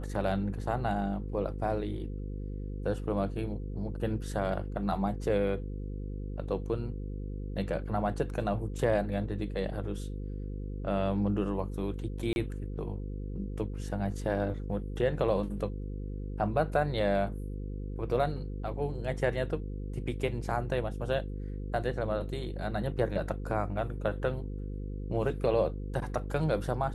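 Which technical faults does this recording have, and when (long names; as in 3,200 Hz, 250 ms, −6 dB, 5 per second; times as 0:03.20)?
mains buzz 50 Hz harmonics 10 −37 dBFS
0:12.33–0:12.36: drop-out 31 ms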